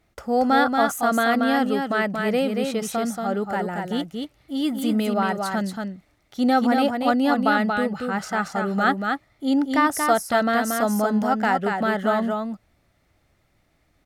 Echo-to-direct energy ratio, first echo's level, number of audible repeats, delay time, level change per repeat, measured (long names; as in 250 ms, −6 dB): −4.5 dB, −4.5 dB, 1, 231 ms, repeats not evenly spaced